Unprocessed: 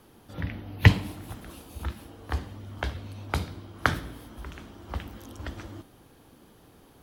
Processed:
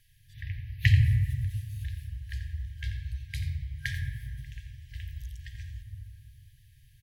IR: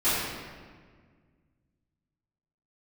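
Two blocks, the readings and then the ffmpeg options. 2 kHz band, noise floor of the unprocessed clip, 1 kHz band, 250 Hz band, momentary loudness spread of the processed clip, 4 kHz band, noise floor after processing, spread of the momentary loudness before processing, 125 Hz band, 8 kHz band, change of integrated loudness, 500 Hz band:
−5.5 dB, −56 dBFS, below −40 dB, below −10 dB, 20 LU, −5.0 dB, −59 dBFS, 22 LU, +1.0 dB, −5.5 dB, −1.5 dB, below −40 dB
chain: -filter_complex "[0:a]aecho=1:1:87:0.251,asplit=2[link_01][link_02];[1:a]atrim=start_sample=2205,lowpass=2700,lowshelf=frequency=270:gain=11[link_03];[link_02][link_03]afir=irnorm=-1:irlink=0,volume=-19.5dB[link_04];[link_01][link_04]amix=inputs=2:normalize=0,afftfilt=real='re*(1-between(b*sr/4096,140,1600))':imag='im*(1-between(b*sr/4096,140,1600))':win_size=4096:overlap=0.75,volume=-5.5dB"

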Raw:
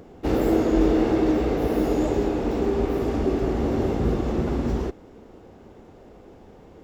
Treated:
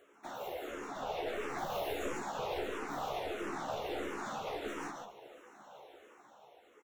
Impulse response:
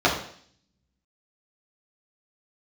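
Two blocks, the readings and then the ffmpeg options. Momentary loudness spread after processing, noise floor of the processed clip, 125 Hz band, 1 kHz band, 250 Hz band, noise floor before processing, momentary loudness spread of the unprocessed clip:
18 LU, −63 dBFS, −26.0 dB, −6.5 dB, −23.5 dB, −48 dBFS, 5 LU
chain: -filter_complex "[0:a]asplit=2[link_01][link_02];[1:a]atrim=start_sample=2205[link_03];[link_02][link_03]afir=irnorm=-1:irlink=0,volume=-26.5dB[link_04];[link_01][link_04]amix=inputs=2:normalize=0,acompressor=threshold=-22dB:ratio=6,asuperstop=centerf=4800:order=4:qfactor=3.6,aecho=1:1:144:0.501,flanger=delay=3.4:depth=5.9:regen=-50:speed=0.45:shape=triangular,dynaudnorm=framelen=250:gausssize=9:maxgain=8dB,highpass=910,afftfilt=real='hypot(re,im)*cos(2*PI*random(0))':imag='hypot(re,im)*sin(2*PI*random(1))':win_size=512:overlap=0.75,aeval=exprs='clip(val(0),-1,0.00708)':channel_layout=same,asplit=2[link_05][link_06];[link_06]adelay=14,volume=-5.5dB[link_07];[link_05][link_07]amix=inputs=2:normalize=0,asplit=2[link_08][link_09];[link_09]afreqshift=-1.5[link_10];[link_08][link_10]amix=inputs=2:normalize=1,volume=5.5dB"

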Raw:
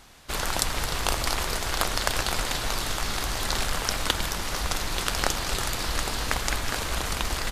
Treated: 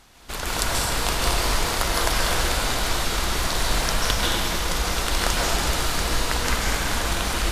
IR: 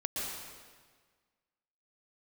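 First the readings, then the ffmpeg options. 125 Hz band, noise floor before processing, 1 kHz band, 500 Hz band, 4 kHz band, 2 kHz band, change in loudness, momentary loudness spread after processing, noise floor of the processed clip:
+5.0 dB, −32 dBFS, +4.5 dB, +5.0 dB, +4.0 dB, +4.0 dB, +4.0 dB, 2 LU, −30 dBFS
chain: -filter_complex "[1:a]atrim=start_sample=2205,asetrate=37926,aresample=44100[link_01];[0:a][link_01]afir=irnorm=-1:irlink=0,volume=-1dB"

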